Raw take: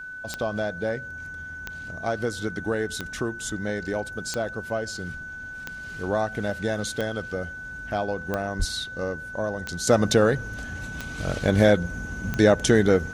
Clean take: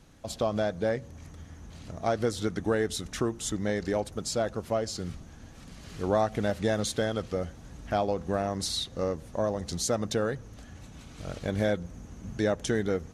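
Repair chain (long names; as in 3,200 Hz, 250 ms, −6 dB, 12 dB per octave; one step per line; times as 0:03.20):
click removal
notch filter 1,500 Hz, Q 30
0:08.58–0:08.70: high-pass filter 140 Hz 24 dB per octave
level 0 dB, from 0:09.87 −9.5 dB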